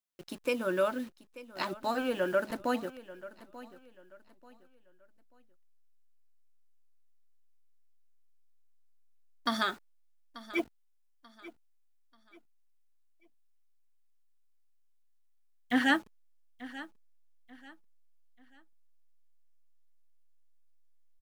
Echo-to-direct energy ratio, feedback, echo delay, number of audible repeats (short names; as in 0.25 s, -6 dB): -16.5 dB, 32%, 0.887 s, 2